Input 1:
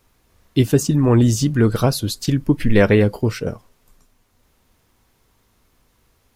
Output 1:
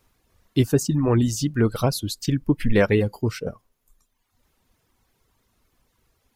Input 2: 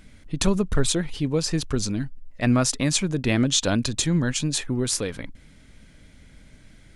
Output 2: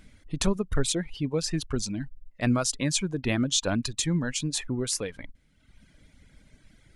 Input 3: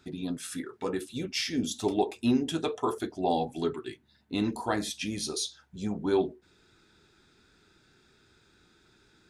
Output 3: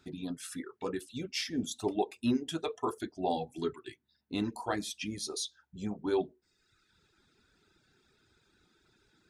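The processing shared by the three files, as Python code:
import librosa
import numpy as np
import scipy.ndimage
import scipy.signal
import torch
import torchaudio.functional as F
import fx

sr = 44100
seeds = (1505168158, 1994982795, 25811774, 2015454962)

y = fx.dereverb_blind(x, sr, rt60_s=1.1)
y = F.gain(torch.from_numpy(y), -3.5).numpy()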